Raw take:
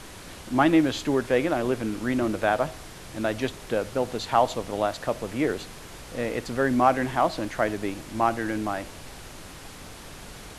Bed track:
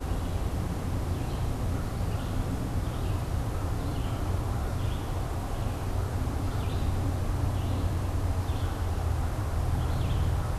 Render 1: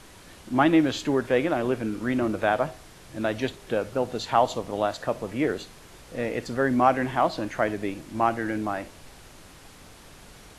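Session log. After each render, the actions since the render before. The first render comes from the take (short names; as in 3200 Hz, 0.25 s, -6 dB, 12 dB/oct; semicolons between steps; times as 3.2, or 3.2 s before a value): noise print and reduce 6 dB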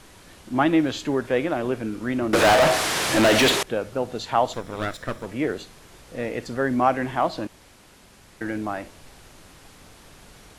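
2.33–3.63 overdrive pedal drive 36 dB, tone 7500 Hz, clips at -9.5 dBFS; 4.53–5.26 minimum comb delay 0.54 ms; 7.47–8.41 room tone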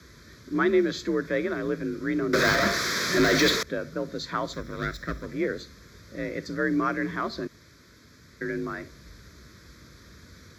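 fixed phaser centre 2800 Hz, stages 6; frequency shift +46 Hz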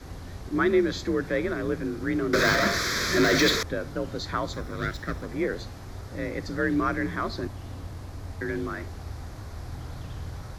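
add bed track -9.5 dB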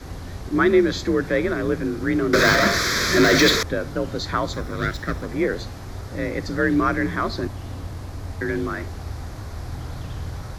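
gain +5.5 dB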